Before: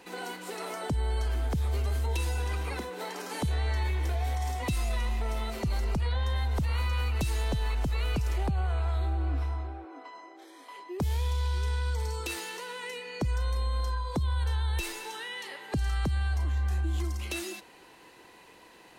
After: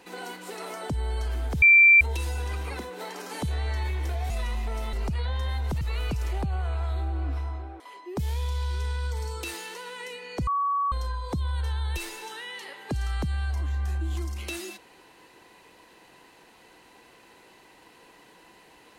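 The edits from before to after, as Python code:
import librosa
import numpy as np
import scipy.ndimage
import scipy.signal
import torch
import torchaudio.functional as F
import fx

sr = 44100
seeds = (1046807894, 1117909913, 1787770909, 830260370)

y = fx.edit(x, sr, fx.bleep(start_s=1.62, length_s=0.39, hz=2350.0, db=-11.5),
    fx.cut(start_s=4.3, length_s=0.54),
    fx.cut(start_s=5.47, length_s=0.33),
    fx.cut(start_s=6.68, length_s=1.18),
    fx.cut(start_s=9.85, length_s=0.78),
    fx.bleep(start_s=13.3, length_s=0.45, hz=1130.0, db=-22.5), tone=tone)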